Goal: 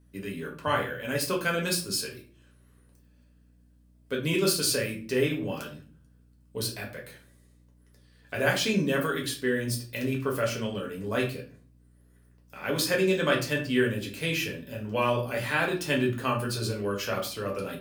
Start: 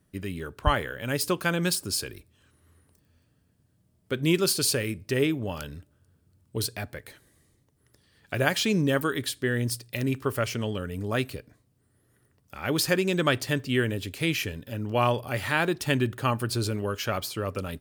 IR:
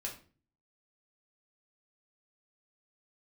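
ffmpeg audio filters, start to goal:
-filter_complex "[0:a]highpass=frequency=130:width=0.5412,highpass=frequency=130:width=1.3066[link_01];[1:a]atrim=start_sample=2205[link_02];[link_01][link_02]afir=irnorm=-1:irlink=0,aeval=exprs='val(0)+0.00126*(sin(2*PI*60*n/s)+sin(2*PI*2*60*n/s)/2+sin(2*PI*3*60*n/s)/3+sin(2*PI*4*60*n/s)/4+sin(2*PI*5*60*n/s)/5)':channel_layout=same"

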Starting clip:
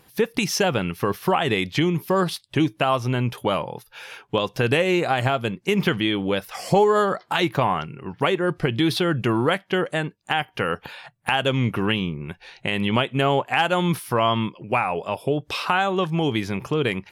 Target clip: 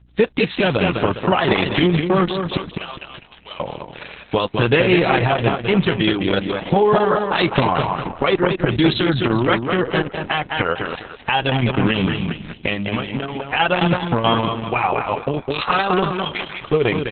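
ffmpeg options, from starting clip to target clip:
ffmpeg -i in.wav -filter_complex "[0:a]asettb=1/sr,asplit=3[link_01][link_02][link_03];[link_01]atrim=end=2.574[link_04];[link_02]atrim=start=2.57:end=3.6,asetpts=PTS-STARTPTS,afade=type=in:duration=0.004:curve=qsin,afade=type=out:start_time=1.026:duration=0.004:curve=qsin,aderivative[link_05];[link_03]atrim=start=3.596[link_06];[link_04][link_05]acrossfade=duration=0.004:curve1=hsin:curve2=qsin[link_07];[link_07][link_06]acrossfade=duration=0.004:curve1=qsin:curve2=hsin,asettb=1/sr,asplit=3[link_08][link_09][link_10];[link_08]atrim=end=12.744[link_11];[link_09]atrim=start=12.74:end=13.53,asetpts=PTS-STARTPTS,afade=type=in:duration=0.004:curve=qsin,afade=type=out:start_time=0.786:duration=0.004:curve=qsin,acompressor=threshold=-26dB:ratio=6[link_12];[link_10]atrim=start=13.526[link_13];[link_11][link_12]acrossfade=duration=0.004:curve1=hsin:curve2=qsin[link_14];[link_14][link_13]acrossfade=duration=0.004:curve1=qsin:curve2=hsin,asplit=3[link_15][link_16][link_17];[link_15]afade=type=out:start_time=16.1:duration=0.02[link_18];[link_16]highpass=frequency=900:width=0.5412,highpass=frequency=900:width=1.3066,afade=type=in:start_time=16.1:duration=0.02,afade=type=out:start_time=16.6:duration=0.02[link_19];[link_17]afade=type=in:start_time=16.6:duration=0.02[link_20];[link_18][link_19][link_20]amix=inputs=3:normalize=0,aeval=exprs='sgn(val(0))*max(abs(val(0))-0.00316,0)':channel_layout=same,aeval=exprs='val(0)+0.00178*(sin(2*PI*60*n/s)+sin(2*PI*2*60*n/s)/2+sin(2*PI*3*60*n/s)/3+sin(2*PI*4*60*n/s)/4+sin(2*PI*5*60*n/s)/5)':channel_layout=same,asplit=2[link_21][link_22];[link_22]aecho=0:1:205|410|615|820:0.501|0.185|0.0686|0.0254[link_23];[link_21][link_23]amix=inputs=2:normalize=0,alimiter=level_in=9.5dB:limit=-1dB:release=50:level=0:latency=1,volume=-3.5dB" -ar 48000 -c:a libopus -b:a 6k out.opus

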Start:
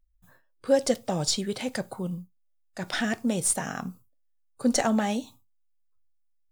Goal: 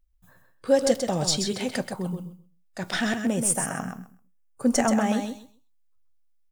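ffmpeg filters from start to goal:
ffmpeg -i in.wav -filter_complex "[0:a]asettb=1/sr,asplit=3[link_01][link_02][link_03];[link_01]atrim=end=3.114[link_04];[link_02]atrim=start=3.11:end=5.13,asetpts=PTS-STARTPTS,afade=type=in:duration=0.004:curve=qsin,afade=type=out:start_time=2.016:duration=0.004:curve=qsin,equalizer=frequency=4000:width_type=o:width=0.45:gain=-13[link_05];[link_03]atrim=start=5.126[link_06];[link_04][link_05]acrossfade=duration=0.004:curve1=hsin:curve2=qsin[link_07];[link_07][link_06]acrossfade=duration=0.004:curve1=qsin:curve2=hsin,aecho=1:1:130|260|390:0.473|0.0804|0.0137,volume=1.5dB" out.wav

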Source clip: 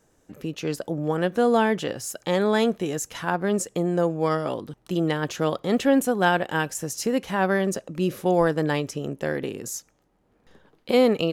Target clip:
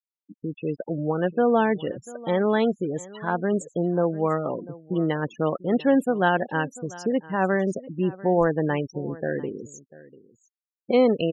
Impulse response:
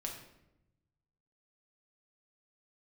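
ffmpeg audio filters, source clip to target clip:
-af "afftfilt=real='re*gte(hypot(re,im),0.0562)':imag='im*gte(hypot(re,im),0.0562)':win_size=1024:overlap=0.75,highshelf=frequency=4700:gain=-11.5,aecho=1:1:694:0.1"

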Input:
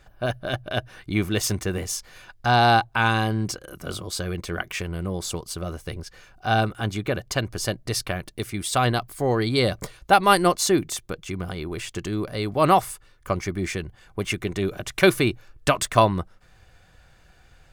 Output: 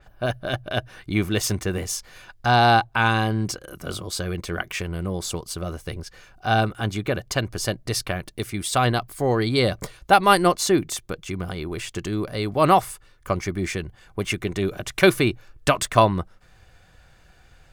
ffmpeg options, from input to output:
ffmpeg -i in.wav -af "adynamicequalizer=threshold=0.0178:dfrequency=4300:dqfactor=0.7:tfrequency=4300:tqfactor=0.7:attack=5:release=100:ratio=0.375:range=2:mode=cutabove:tftype=highshelf,volume=1dB" out.wav

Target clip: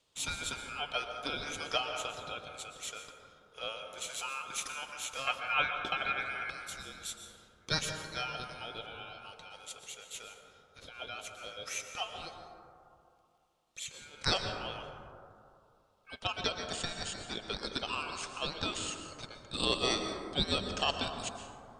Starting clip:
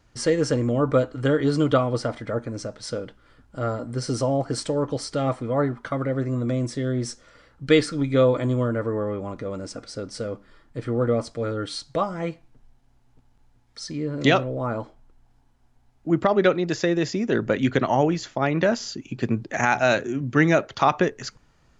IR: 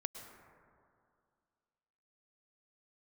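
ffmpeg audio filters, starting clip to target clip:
-filter_complex "[0:a]asetnsamples=nb_out_samples=441:pad=0,asendcmd='5.27 highpass f 440;6.5 highpass f 1400',highpass=1100,aeval=exprs='val(0)*sin(2*PI*1900*n/s)':channel_layout=same[link_01];[1:a]atrim=start_sample=2205,asetrate=40131,aresample=44100[link_02];[link_01][link_02]afir=irnorm=-1:irlink=0"

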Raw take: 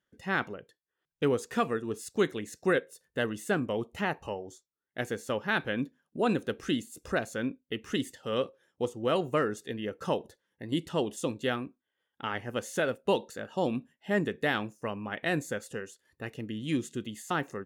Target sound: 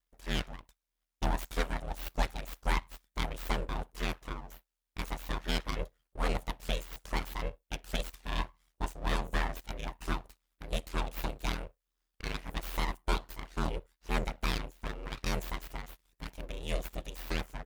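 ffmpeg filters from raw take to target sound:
ffmpeg -i in.wav -af "crystalizer=i=1.5:c=0,aeval=exprs='abs(val(0))':channel_layout=same,aeval=exprs='val(0)*sin(2*PI*40*n/s)':channel_layout=same" out.wav

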